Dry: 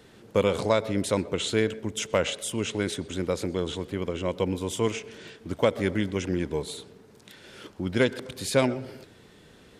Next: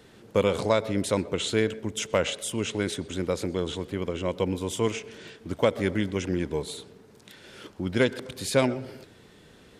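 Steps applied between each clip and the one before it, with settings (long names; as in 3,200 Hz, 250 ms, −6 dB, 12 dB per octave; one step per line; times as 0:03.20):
no processing that can be heard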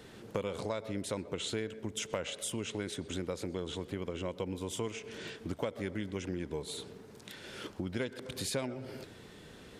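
downward compressor 4 to 1, threshold −36 dBFS, peak gain reduction 16 dB
level +1 dB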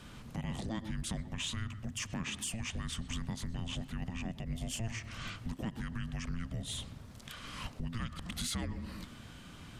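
brickwall limiter −28 dBFS, peak gain reduction 8.5 dB
frequency shifter −340 Hz
soft clipping −27.5 dBFS, distortion −24 dB
level +2 dB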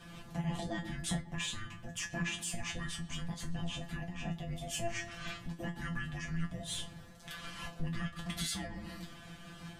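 tuned comb filter 170 Hz, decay 0.2 s, harmonics all, mix 100%
hollow resonant body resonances 720/1,700 Hz, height 9 dB, ringing for 40 ms
amplitude modulation by smooth noise, depth 60%
level +13.5 dB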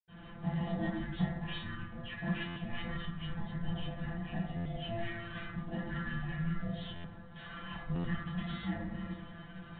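convolution reverb RT60 0.90 s, pre-delay 76 ms
buffer that repeats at 0:02.47/0:04.56/0:06.95/0:07.95, samples 512, times 7
level +1 dB
IMA ADPCM 32 kbit/s 8,000 Hz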